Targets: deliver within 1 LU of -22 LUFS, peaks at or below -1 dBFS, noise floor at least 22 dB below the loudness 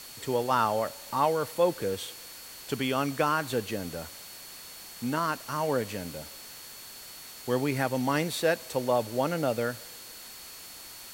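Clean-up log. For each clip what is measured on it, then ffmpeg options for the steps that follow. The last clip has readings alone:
steady tone 4400 Hz; tone level -50 dBFS; noise floor -46 dBFS; noise floor target -52 dBFS; loudness -29.5 LUFS; peak -12.0 dBFS; loudness target -22.0 LUFS
-> -af "bandreject=f=4.4k:w=30"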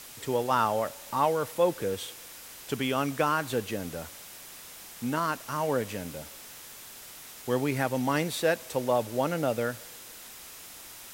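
steady tone none; noise floor -47 dBFS; noise floor target -52 dBFS
-> -af "afftdn=nr=6:nf=-47"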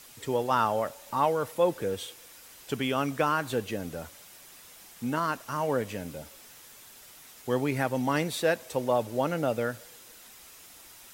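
noise floor -51 dBFS; noise floor target -52 dBFS
-> -af "afftdn=nr=6:nf=-51"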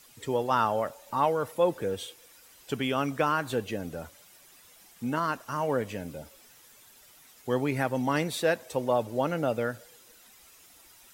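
noise floor -56 dBFS; loudness -29.5 LUFS; peak -12.0 dBFS; loudness target -22.0 LUFS
-> -af "volume=7.5dB"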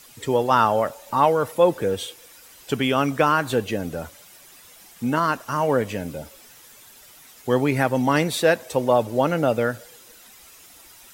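loudness -22.0 LUFS; peak -4.5 dBFS; noise floor -49 dBFS

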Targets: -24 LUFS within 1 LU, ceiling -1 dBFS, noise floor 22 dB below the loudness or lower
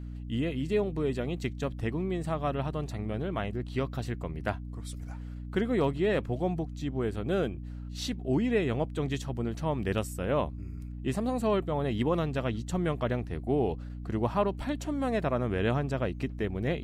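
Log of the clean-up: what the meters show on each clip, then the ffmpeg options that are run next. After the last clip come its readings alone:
hum 60 Hz; harmonics up to 300 Hz; hum level -37 dBFS; loudness -31.5 LUFS; peak -15.5 dBFS; loudness target -24.0 LUFS
-> -af "bandreject=f=60:t=h:w=6,bandreject=f=120:t=h:w=6,bandreject=f=180:t=h:w=6,bandreject=f=240:t=h:w=6,bandreject=f=300:t=h:w=6"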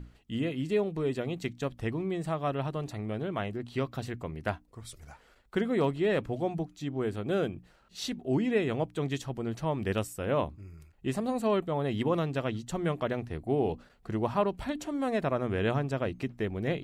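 hum none; loudness -32.0 LUFS; peak -15.5 dBFS; loudness target -24.0 LUFS
-> -af "volume=8dB"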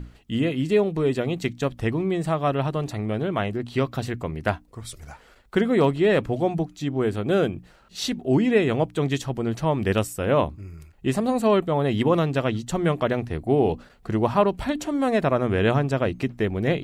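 loudness -24.0 LUFS; peak -7.5 dBFS; noise floor -53 dBFS

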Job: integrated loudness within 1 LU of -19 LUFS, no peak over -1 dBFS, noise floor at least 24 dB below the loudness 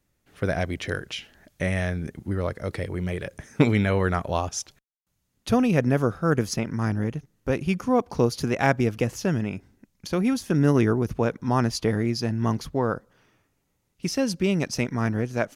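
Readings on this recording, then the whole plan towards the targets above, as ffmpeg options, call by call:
loudness -25.5 LUFS; peak -4.5 dBFS; loudness target -19.0 LUFS
-> -af "volume=6.5dB,alimiter=limit=-1dB:level=0:latency=1"

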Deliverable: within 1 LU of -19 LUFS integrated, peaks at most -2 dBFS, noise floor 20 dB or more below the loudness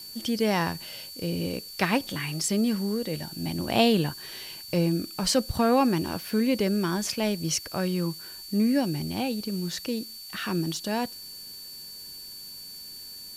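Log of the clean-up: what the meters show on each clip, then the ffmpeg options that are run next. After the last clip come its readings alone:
steady tone 4500 Hz; tone level -41 dBFS; noise floor -42 dBFS; noise floor target -48 dBFS; loudness -27.5 LUFS; peak -7.5 dBFS; loudness target -19.0 LUFS
-> -af "bandreject=f=4.5k:w=30"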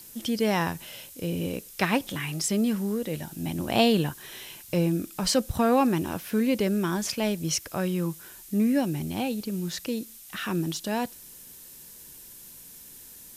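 steady tone none; noise floor -47 dBFS; noise floor target -48 dBFS
-> -af "afftdn=nr=6:nf=-47"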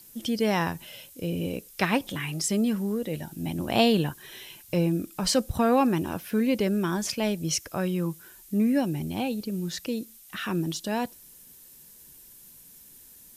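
noise floor -51 dBFS; loudness -27.5 LUFS; peak -7.5 dBFS; loudness target -19.0 LUFS
-> -af "volume=8.5dB,alimiter=limit=-2dB:level=0:latency=1"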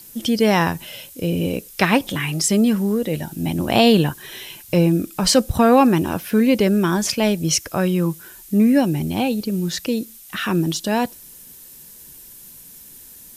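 loudness -19.0 LUFS; peak -2.0 dBFS; noise floor -43 dBFS

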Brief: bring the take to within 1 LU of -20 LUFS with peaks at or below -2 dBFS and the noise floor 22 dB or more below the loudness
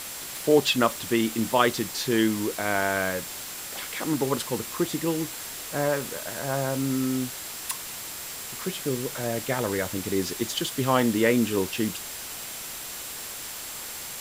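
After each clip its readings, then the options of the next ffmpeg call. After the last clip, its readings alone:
steady tone 7600 Hz; tone level -45 dBFS; noise floor -37 dBFS; noise floor target -49 dBFS; loudness -27.0 LUFS; peak -5.5 dBFS; loudness target -20.0 LUFS
-> -af "bandreject=f=7.6k:w=30"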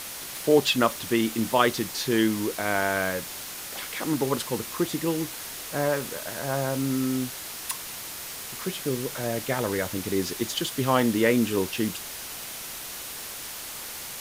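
steady tone none; noise floor -38 dBFS; noise floor target -49 dBFS
-> -af "afftdn=nr=11:nf=-38"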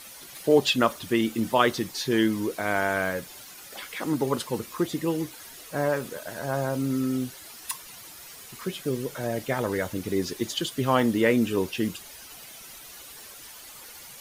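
noise floor -45 dBFS; noise floor target -49 dBFS
-> -af "afftdn=nr=6:nf=-45"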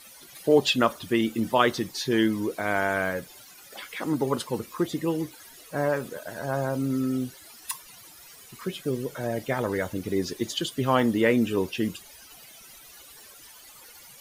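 noise floor -49 dBFS; loudness -27.0 LUFS; peak -5.5 dBFS; loudness target -20.0 LUFS
-> -af "volume=7dB,alimiter=limit=-2dB:level=0:latency=1"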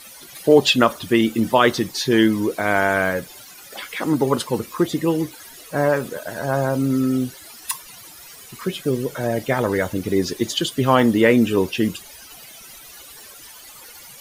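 loudness -20.0 LUFS; peak -2.0 dBFS; noise floor -42 dBFS

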